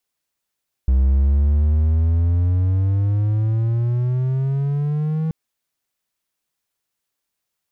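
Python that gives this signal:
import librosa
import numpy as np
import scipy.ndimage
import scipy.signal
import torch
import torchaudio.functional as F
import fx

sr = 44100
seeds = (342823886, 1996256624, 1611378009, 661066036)

y = fx.riser_tone(sr, length_s=4.43, level_db=-10.0, wave='triangle', hz=63.9, rise_st=16.0, swell_db=-6.5)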